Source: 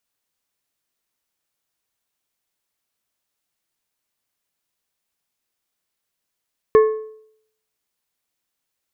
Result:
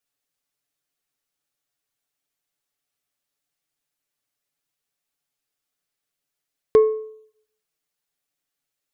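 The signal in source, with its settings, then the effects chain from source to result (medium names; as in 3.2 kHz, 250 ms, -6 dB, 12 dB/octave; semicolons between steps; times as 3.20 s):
metal hit plate, lowest mode 435 Hz, modes 4, decay 0.67 s, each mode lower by 10.5 dB, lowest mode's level -6 dB
touch-sensitive flanger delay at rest 7.1 ms, full sweep at -30 dBFS; band-stop 970 Hz, Q 9.8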